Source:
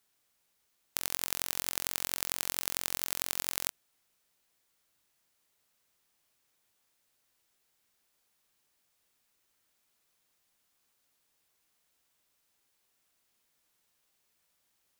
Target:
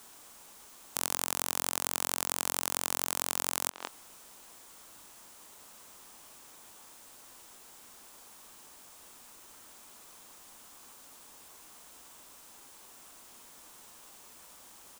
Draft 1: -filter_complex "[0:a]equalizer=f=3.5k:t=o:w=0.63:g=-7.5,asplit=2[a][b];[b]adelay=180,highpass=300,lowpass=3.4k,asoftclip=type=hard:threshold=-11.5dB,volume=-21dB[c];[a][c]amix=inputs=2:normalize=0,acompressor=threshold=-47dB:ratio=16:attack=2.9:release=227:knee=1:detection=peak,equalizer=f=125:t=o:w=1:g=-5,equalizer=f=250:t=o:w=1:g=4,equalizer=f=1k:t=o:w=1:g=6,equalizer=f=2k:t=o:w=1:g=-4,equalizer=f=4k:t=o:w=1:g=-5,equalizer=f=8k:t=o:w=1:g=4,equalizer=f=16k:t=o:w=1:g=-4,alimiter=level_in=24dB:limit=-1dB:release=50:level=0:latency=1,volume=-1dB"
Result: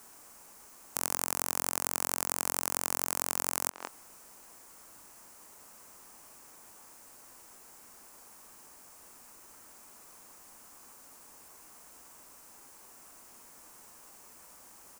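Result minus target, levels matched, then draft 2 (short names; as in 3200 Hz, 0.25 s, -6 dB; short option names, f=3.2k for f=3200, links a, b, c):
4000 Hz band -4.5 dB
-filter_complex "[0:a]equalizer=f=3.5k:t=o:w=0.63:g=2.5,asplit=2[a][b];[b]adelay=180,highpass=300,lowpass=3.4k,asoftclip=type=hard:threshold=-11.5dB,volume=-21dB[c];[a][c]amix=inputs=2:normalize=0,acompressor=threshold=-47dB:ratio=16:attack=2.9:release=227:knee=1:detection=peak,equalizer=f=125:t=o:w=1:g=-5,equalizer=f=250:t=o:w=1:g=4,equalizer=f=1k:t=o:w=1:g=6,equalizer=f=2k:t=o:w=1:g=-4,equalizer=f=4k:t=o:w=1:g=-5,equalizer=f=8k:t=o:w=1:g=4,equalizer=f=16k:t=o:w=1:g=-4,alimiter=level_in=24dB:limit=-1dB:release=50:level=0:latency=1,volume=-1dB"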